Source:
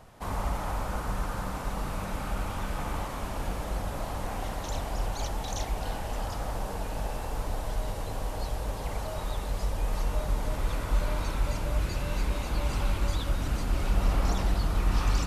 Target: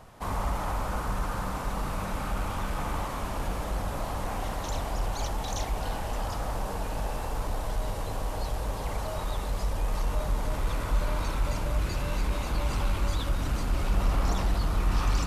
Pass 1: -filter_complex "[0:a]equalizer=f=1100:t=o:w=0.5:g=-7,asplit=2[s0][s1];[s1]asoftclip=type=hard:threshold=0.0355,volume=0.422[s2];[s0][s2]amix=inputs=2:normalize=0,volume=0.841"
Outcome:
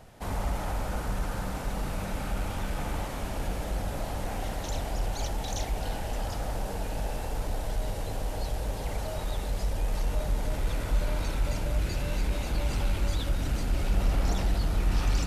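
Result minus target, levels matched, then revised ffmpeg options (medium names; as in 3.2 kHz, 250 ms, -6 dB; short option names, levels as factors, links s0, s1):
1 kHz band -3.5 dB
-filter_complex "[0:a]equalizer=f=1100:t=o:w=0.5:g=2.5,asplit=2[s0][s1];[s1]asoftclip=type=hard:threshold=0.0355,volume=0.422[s2];[s0][s2]amix=inputs=2:normalize=0,volume=0.841"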